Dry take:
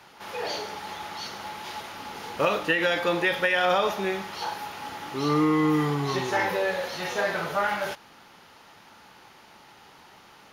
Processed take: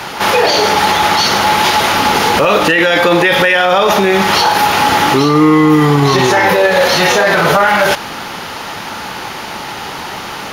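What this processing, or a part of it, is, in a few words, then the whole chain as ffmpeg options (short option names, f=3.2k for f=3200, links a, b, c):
loud club master: -af "acompressor=threshold=-28dB:ratio=2,asoftclip=type=hard:threshold=-18dB,alimiter=level_in=28.5dB:limit=-1dB:release=50:level=0:latency=1,volume=-1dB"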